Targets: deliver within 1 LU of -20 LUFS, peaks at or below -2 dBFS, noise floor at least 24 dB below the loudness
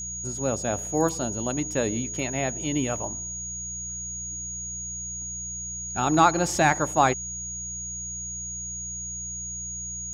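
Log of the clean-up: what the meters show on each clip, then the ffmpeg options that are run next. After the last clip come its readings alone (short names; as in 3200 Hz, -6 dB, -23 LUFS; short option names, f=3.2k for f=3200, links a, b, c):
hum 60 Hz; harmonics up to 180 Hz; hum level -40 dBFS; steady tone 6700 Hz; tone level -32 dBFS; loudness -27.0 LUFS; peak -6.0 dBFS; loudness target -20.0 LUFS
-> -af "bandreject=f=60:t=h:w=4,bandreject=f=120:t=h:w=4,bandreject=f=180:t=h:w=4"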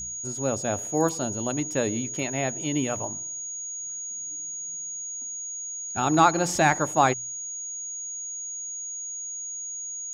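hum none; steady tone 6700 Hz; tone level -32 dBFS
-> -af "bandreject=f=6.7k:w=30"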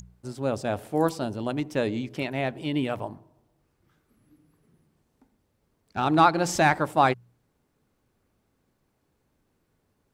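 steady tone none; loudness -26.0 LUFS; peak -6.5 dBFS; loudness target -20.0 LUFS
-> -af "volume=6dB,alimiter=limit=-2dB:level=0:latency=1"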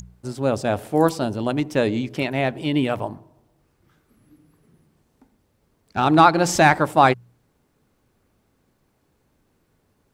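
loudness -20.0 LUFS; peak -2.0 dBFS; noise floor -67 dBFS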